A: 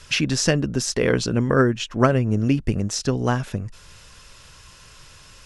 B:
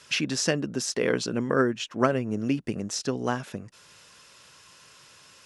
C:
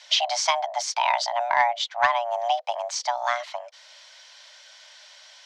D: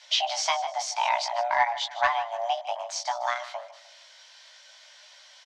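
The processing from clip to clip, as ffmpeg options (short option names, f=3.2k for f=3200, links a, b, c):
-af "highpass=190,volume=-4.5dB"
-af "afreqshift=470,acontrast=65,lowpass=f=4.6k:t=q:w=1.9,volume=-4.5dB"
-af "flanger=delay=16:depth=3.3:speed=0.57,aecho=1:1:153|306|459:0.168|0.0621|0.023"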